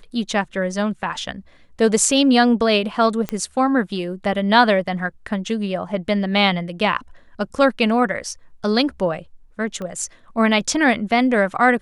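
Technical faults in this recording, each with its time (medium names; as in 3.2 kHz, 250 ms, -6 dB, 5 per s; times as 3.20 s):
3.29 s: pop -10 dBFS
9.82 s: pop -19 dBFS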